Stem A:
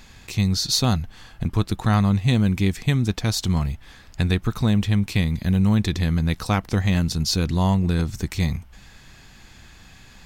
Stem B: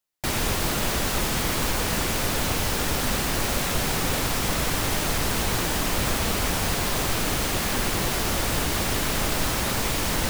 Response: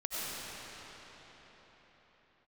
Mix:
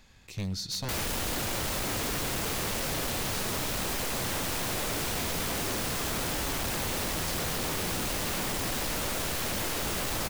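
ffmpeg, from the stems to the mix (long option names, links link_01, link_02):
-filter_complex "[0:a]volume=-12dB,asplit=2[link_01][link_02];[link_02]volume=-20.5dB[link_03];[1:a]aeval=exprs='0.1*(abs(mod(val(0)/0.1+3,4)-2)-1)':channel_layout=same,adelay=650,volume=-1.5dB,asplit=2[link_04][link_05];[link_05]volume=-11dB[link_06];[2:a]atrim=start_sample=2205[link_07];[link_03][link_06]amix=inputs=2:normalize=0[link_08];[link_08][link_07]afir=irnorm=-1:irlink=0[link_09];[link_01][link_04][link_09]amix=inputs=3:normalize=0,equalizer=frequency=540:width_type=o:width=0.22:gain=5,acrossover=split=450[link_10][link_11];[link_11]acompressor=threshold=-28dB:ratio=2.5[link_12];[link_10][link_12]amix=inputs=2:normalize=0,aeval=exprs='0.0473*(abs(mod(val(0)/0.0473+3,4)-2)-1)':channel_layout=same"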